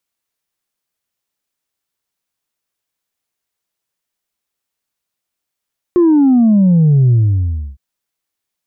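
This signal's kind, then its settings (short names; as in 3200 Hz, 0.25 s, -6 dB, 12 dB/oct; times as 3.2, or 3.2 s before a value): sub drop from 360 Hz, over 1.81 s, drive 1 dB, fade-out 0.66 s, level -7 dB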